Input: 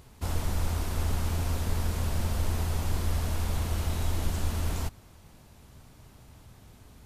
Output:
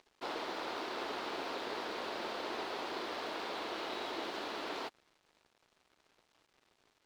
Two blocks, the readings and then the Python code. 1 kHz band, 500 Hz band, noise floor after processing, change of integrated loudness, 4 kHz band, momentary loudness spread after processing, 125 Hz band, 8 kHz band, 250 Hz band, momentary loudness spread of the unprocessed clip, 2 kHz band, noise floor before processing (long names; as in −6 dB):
+0.5 dB, +0.5 dB, −76 dBFS, −8.5 dB, −0.5 dB, 1 LU, −36.0 dB, −16.0 dB, −7.5 dB, 2 LU, +0.5 dB, −54 dBFS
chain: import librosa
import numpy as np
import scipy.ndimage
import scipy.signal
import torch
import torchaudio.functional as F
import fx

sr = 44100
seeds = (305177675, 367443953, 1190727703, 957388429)

y = scipy.signal.sosfilt(scipy.signal.cheby1(3, 1.0, [340.0, 4300.0], 'bandpass', fs=sr, output='sos'), x)
y = np.sign(y) * np.maximum(np.abs(y) - 10.0 ** (-58.5 / 20.0), 0.0)
y = y * librosa.db_to_amplitude(2.0)